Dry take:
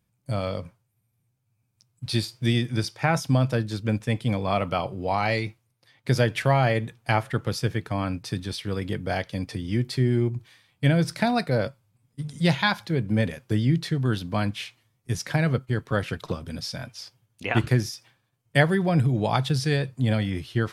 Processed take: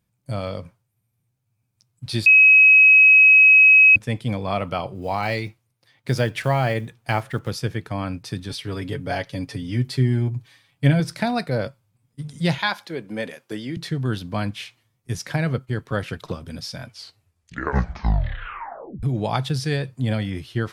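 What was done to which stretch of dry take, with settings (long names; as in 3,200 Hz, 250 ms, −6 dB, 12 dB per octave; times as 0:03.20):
0:02.26–0:03.96: beep over 2,550 Hz −8 dBFS
0:04.95–0:07.51: one scale factor per block 7 bits
0:08.49–0:11.00: comb filter 7.2 ms
0:12.58–0:13.77: high-pass filter 320 Hz
0:16.84: tape stop 2.19 s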